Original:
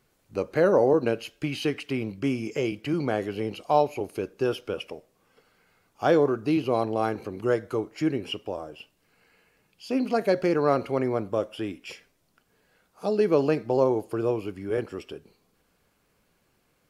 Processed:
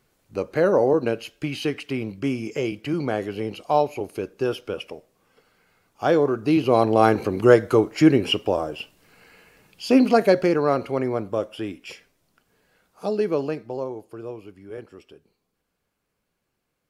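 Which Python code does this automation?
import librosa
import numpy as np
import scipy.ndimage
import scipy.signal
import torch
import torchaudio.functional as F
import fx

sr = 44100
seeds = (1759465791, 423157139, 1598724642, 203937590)

y = fx.gain(x, sr, db=fx.line((6.22, 1.5), (7.11, 10.5), (9.93, 10.5), (10.67, 1.5), (13.05, 1.5), (13.92, -9.0)))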